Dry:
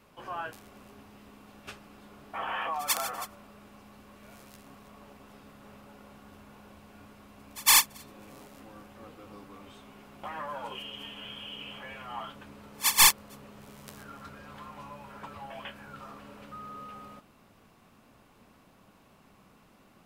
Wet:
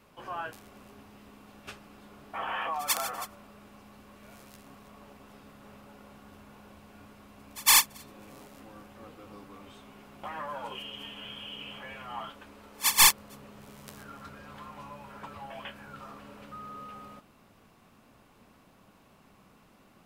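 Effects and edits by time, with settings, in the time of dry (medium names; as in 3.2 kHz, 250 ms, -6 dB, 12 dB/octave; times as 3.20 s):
12.29–12.83 s: peaking EQ 140 Hz -14 dB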